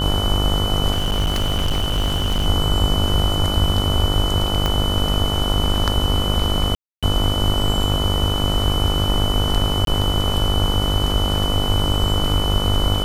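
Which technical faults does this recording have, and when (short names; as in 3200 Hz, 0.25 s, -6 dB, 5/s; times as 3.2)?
buzz 50 Hz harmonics 29 -23 dBFS
tone 3000 Hz -24 dBFS
0.93–2.46 clipped -15.5 dBFS
4.66 pop -7 dBFS
6.75–7.03 gap 0.276 s
9.85–9.87 gap 22 ms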